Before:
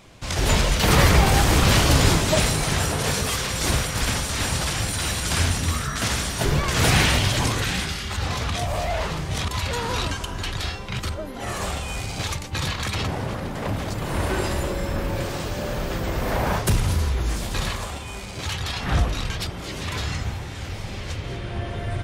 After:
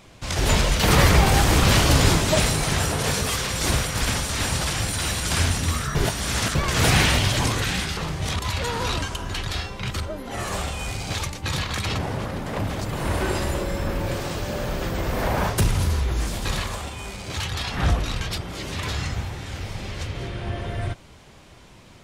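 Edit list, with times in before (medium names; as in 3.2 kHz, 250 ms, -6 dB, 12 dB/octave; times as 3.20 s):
5.95–6.55 s: reverse
7.97–9.06 s: delete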